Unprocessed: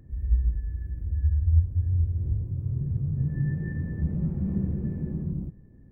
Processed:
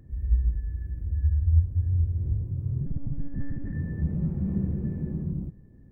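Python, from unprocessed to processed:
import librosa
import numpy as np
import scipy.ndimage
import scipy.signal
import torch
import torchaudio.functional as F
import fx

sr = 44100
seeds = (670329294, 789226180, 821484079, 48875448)

y = fx.lpc_monotone(x, sr, seeds[0], pitch_hz=280.0, order=8, at=(2.86, 3.73))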